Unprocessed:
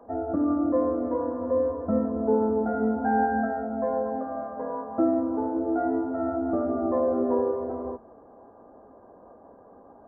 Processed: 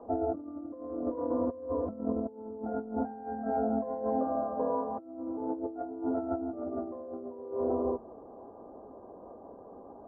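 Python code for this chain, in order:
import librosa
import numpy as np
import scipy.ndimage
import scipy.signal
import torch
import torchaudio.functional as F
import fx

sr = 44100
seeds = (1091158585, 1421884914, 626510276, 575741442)

y = scipy.signal.sosfilt(scipy.signal.butter(4, 1200.0, 'lowpass', fs=sr, output='sos'), x)
y = fx.peak_eq(y, sr, hz=370.0, db=4.0, octaves=0.63)
y = fx.over_compress(y, sr, threshold_db=-29.0, ratio=-0.5)
y = y * librosa.db_to_amplitude(-4.0)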